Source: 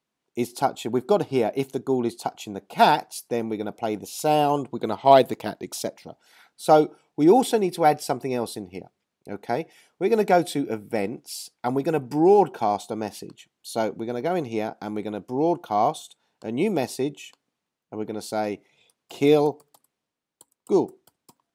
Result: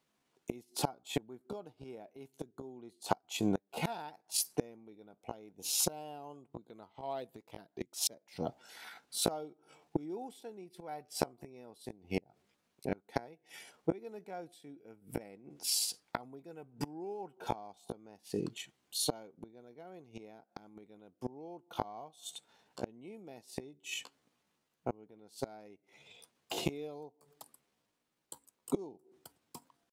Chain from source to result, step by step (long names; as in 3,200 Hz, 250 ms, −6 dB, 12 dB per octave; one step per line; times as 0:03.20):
pitch vibrato 3.5 Hz 6 cents
gate with flip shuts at −22 dBFS, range −30 dB
tempo change 0.72×
level +3.5 dB